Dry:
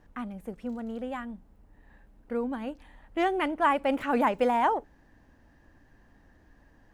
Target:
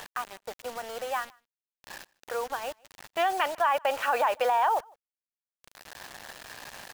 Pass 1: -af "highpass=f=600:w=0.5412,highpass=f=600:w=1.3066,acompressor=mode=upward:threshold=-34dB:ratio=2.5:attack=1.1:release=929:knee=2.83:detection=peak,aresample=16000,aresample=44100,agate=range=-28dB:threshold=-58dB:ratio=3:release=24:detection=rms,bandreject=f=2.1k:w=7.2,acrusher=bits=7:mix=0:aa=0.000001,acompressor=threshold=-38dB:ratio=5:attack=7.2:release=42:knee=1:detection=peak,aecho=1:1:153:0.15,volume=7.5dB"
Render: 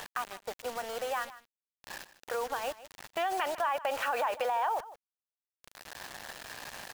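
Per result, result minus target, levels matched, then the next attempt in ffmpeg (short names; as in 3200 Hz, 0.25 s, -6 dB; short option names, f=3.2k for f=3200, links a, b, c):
echo-to-direct +11.5 dB; compressor: peak gain reduction +6 dB
-af "highpass=f=600:w=0.5412,highpass=f=600:w=1.3066,acompressor=mode=upward:threshold=-34dB:ratio=2.5:attack=1.1:release=929:knee=2.83:detection=peak,aresample=16000,aresample=44100,agate=range=-28dB:threshold=-58dB:ratio=3:release=24:detection=rms,bandreject=f=2.1k:w=7.2,acrusher=bits=7:mix=0:aa=0.000001,acompressor=threshold=-38dB:ratio=5:attack=7.2:release=42:knee=1:detection=peak,aecho=1:1:153:0.0398,volume=7.5dB"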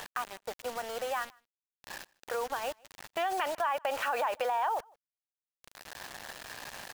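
compressor: peak gain reduction +6 dB
-af "highpass=f=600:w=0.5412,highpass=f=600:w=1.3066,acompressor=mode=upward:threshold=-34dB:ratio=2.5:attack=1.1:release=929:knee=2.83:detection=peak,aresample=16000,aresample=44100,agate=range=-28dB:threshold=-58dB:ratio=3:release=24:detection=rms,bandreject=f=2.1k:w=7.2,acrusher=bits=7:mix=0:aa=0.000001,acompressor=threshold=-30.5dB:ratio=5:attack=7.2:release=42:knee=1:detection=peak,aecho=1:1:153:0.0398,volume=7.5dB"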